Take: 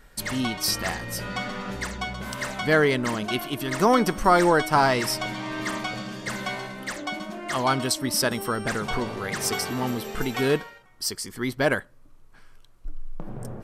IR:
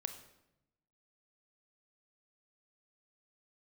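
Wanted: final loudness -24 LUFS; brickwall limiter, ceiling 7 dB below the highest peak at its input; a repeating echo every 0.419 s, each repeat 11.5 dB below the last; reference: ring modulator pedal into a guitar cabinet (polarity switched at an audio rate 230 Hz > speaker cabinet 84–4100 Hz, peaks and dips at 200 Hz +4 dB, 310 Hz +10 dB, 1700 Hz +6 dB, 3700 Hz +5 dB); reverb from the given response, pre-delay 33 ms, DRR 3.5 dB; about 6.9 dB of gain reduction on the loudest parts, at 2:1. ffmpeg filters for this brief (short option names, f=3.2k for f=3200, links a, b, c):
-filter_complex "[0:a]acompressor=threshold=-27dB:ratio=2,alimiter=limit=-18.5dB:level=0:latency=1,aecho=1:1:419|838|1257:0.266|0.0718|0.0194,asplit=2[a][b];[1:a]atrim=start_sample=2205,adelay=33[c];[b][c]afir=irnorm=-1:irlink=0,volume=-2dB[d];[a][d]amix=inputs=2:normalize=0,aeval=exprs='val(0)*sgn(sin(2*PI*230*n/s))':c=same,highpass=84,equalizer=f=200:t=q:w=4:g=4,equalizer=f=310:t=q:w=4:g=10,equalizer=f=1.7k:t=q:w=4:g=6,equalizer=f=3.7k:t=q:w=4:g=5,lowpass=f=4.1k:w=0.5412,lowpass=f=4.1k:w=1.3066,volume=3dB"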